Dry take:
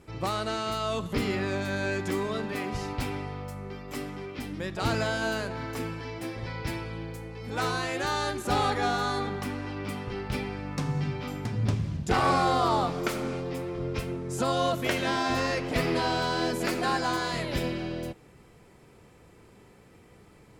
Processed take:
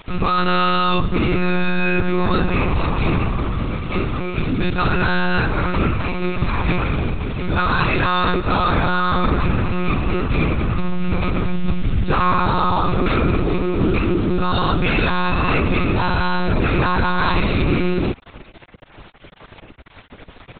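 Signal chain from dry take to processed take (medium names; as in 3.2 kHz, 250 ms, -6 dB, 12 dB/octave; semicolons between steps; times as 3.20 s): comb 0.8 ms, depth 74%; in parallel at +3 dB: compressor with a negative ratio -29 dBFS, ratio -0.5; on the sum: word length cut 6-bit, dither none; monotone LPC vocoder at 8 kHz 180 Hz; trim +4.5 dB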